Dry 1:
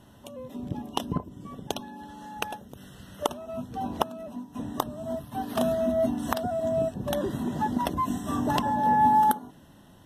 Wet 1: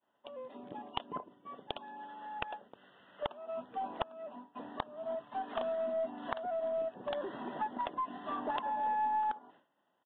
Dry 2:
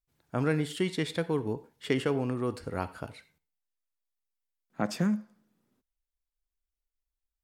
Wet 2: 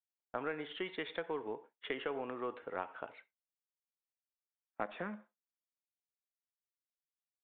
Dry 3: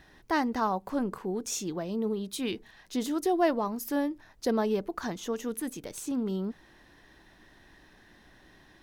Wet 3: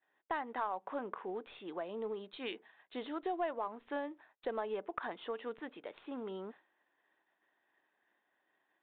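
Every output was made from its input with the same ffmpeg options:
-af "highpass=560,agate=range=-33dB:threshold=-49dB:ratio=3:detection=peak,acompressor=threshold=-34dB:ratio=3,acrusher=bits=6:mode=log:mix=0:aa=0.000001,aeval=exprs='0.158*(cos(1*acos(clip(val(0)/0.158,-1,1)))-cos(1*PI/2))+0.0282*(cos(4*acos(clip(val(0)/0.158,-1,1)))-cos(4*PI/2))+0.0112*(cos(6*acos(clip(val(0)/0.158,-1,1)))-cos(6*PI/2))':channel_layout=same,adynamicsmooth=sensitivity=2:basefreq=3000,aresample=8000,aresample=44100"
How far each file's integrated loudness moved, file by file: −10.0, −10.5, −10.0 LU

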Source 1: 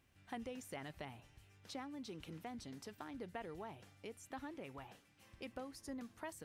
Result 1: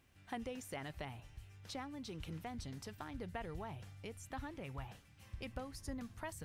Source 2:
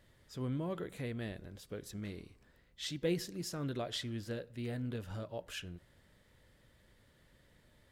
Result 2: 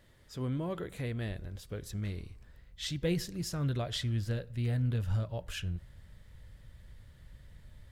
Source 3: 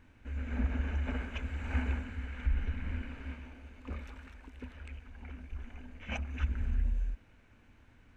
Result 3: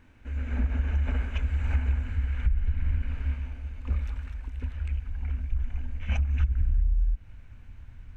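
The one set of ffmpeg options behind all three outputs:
-af "asubboost=boost=6.5:cutoff=120,acompressor=threshold=-24dB:ratio=6,volume=3dB"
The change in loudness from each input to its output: +2.5, +5.0, +7.5 LU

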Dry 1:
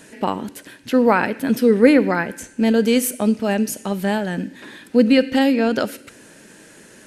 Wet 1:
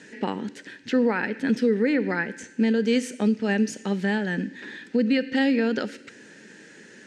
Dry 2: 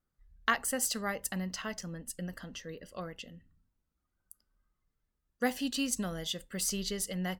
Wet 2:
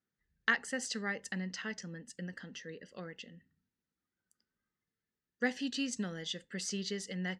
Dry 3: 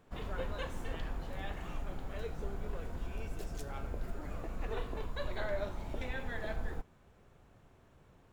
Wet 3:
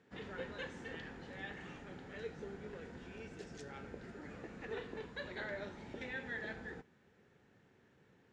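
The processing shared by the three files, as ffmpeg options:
-af "highpass=140,equalizer=frequency=210:width_type=q:width=4:gain=3,equalizer=frequency=430:width_type=q:width=4:gain=3,equalizer=frequency=650:width_type=q:width=4:gain=-8,equalizer=frequency=1100:width_type=q:width=4:gain=-8,equalizer=frequency=1800:width_type=q:width=4:gain=7,lowpass=frequency=6900:width=0.5412,lowpass=frequency=6900:width=1.3066,alimiter=limit=-10.5dB:level=0:latency=1:release=286,volume=-3dB"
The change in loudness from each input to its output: −6.5, −3.0, −4.5 LU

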